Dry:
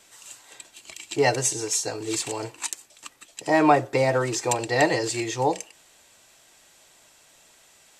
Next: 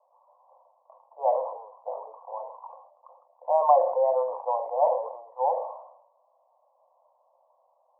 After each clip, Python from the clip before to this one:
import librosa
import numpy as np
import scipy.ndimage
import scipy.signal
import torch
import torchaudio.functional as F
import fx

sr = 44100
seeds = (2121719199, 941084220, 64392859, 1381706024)

y = scipy.signal.sosfilt(scipy.signal.cheby1(5, 1.0, [510.0, 1100.0], 'bandpass', fs=sr, output='sos'), x)
y = fx.sustainer(y, sr, db_per_s=71.0)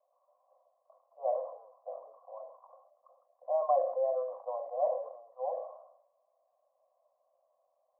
y = fx.fixed_phaser(x, sr, hz=600.0, stages=8)
y = y * librosa.db_to_amplitude(-6.0)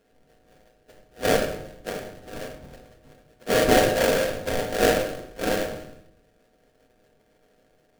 y = fx.freq_snap(x, sr, grid_st=3)
y = fx.sample_hold(y, sr, seeds[0], rate_hz=1100.0, jitter_pct=20)
y = fx.room_shoebox(y, sr, seeds[1], volume_m3=820.0, walls='furnished', distance_m=1.7)
y = y * librosa.db_to_amplitude(7.5)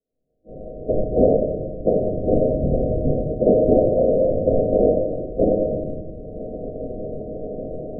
y = fx.recorder_agc(x, sr, target_db=-11.5, rise_db_per_s=32.0, max_gain_db=30)
y = fx.noise_reduce_blind(y, sr, reduce_db=26)
y = scipy.signal.sosfilt(scipy.signal.butter(16, 690.0, 'lowpass', fs=sr, output='sos'), y)
y = y * librosa.db_to_amplitude(3.5)